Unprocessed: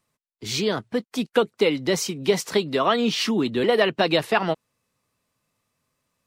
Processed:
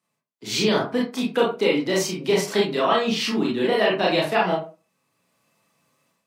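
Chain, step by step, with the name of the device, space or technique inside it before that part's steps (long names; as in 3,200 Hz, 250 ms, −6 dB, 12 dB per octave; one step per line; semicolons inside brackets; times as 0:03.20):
far laptop microphone (convolution reverb RT60 0.30 s, pre-delay 26 ms, DRR −4 dB; high-pass filter 140 Hz 24 dB per octave; automatic gain control gain up to 10 dB)
level −6 dB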